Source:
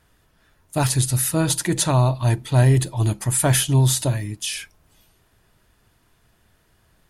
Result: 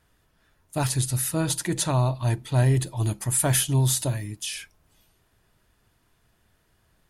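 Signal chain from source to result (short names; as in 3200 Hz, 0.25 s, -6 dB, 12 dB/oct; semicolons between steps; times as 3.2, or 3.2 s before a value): 2.87–4.44 high shelf 8900 Hz +5.5 dB; gain -5 dB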